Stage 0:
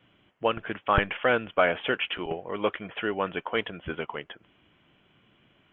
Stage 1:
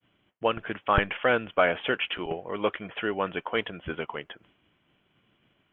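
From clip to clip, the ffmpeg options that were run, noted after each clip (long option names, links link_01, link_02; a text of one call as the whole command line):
ffmpeg -i in.wav -af "agate=range=-33dB:threshold=-57dB:ratio=3:detection=peak" out.wav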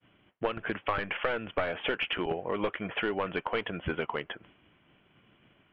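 ffmpeg -i in.wav -af "aeval=exprs='clip(val(0),-1,0.0631)':channel_layout=same,lowpass=frequency=3200:width=0.5412,lowpass=frequency=3200:width=1.3066,acompressor=threshold=-32dB:ratio=6,volume=5dB" out.wav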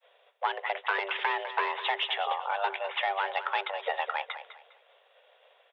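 ffmpeg -i in.wav -af "afreqshift=390,aecho=1:1:203|406|609:0.251|0.0703|0.0197,volume=1dB" out.wav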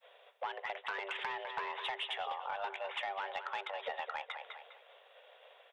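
ffmpeg -i in.wav -af "acompressor=threshold=-42dB:ratio=2.5,asoftclip=type=tanh:threshold=-29.5dB,volume=2dB" out.wav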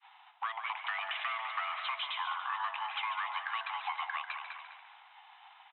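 ffmpeg -i in.wav -filter_complex "[0:a]asplit=2[link_01][link_02];[link_02]asplit=6[link_03][link_04][link_05][link_06][link_07][link_08];[link_03]adelay=143,afreqshift=-48,volume=-9dB[link_09];[link_04]adelay=286,afreqshift=-96,volume=-14.5dB[link_10];[link_05]adelay=429,afreqshift=-144,volume=-20dB[link_11];[link_06]adelay=572,afreqshift=-192,volume=-25.5dB[link_12];[link_07]adelay=715,afreqshift=-240,volume=-31.1dB[link_13];[link_08]adelay=858,afreqshift=-288,volume=-36.6dB[link_14];[link_09][link_10][link_11][link_12][link_13][link_14]amix=inputs=6:normalize=0[link_15];[link_01][link_15]amix=inputs=2:normalize=0,highpass=frequency=430:width_type=q:width=0.5412,highpass=frequency=430:width_type=q:width=1.307,lowpass=frequency=3100:width_type=q:width=0.5176,lowpass=frequency=3100:width_type=q:width=0.7071,lowpass=frequency=3100:width_type=q:width=1.932,afreqshift=280,volume=3dB" out.wav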